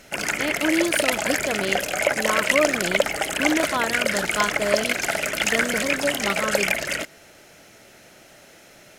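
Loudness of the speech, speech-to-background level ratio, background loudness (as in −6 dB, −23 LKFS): −27.5 LKFS, −5.0 dB, −22.5 LKFS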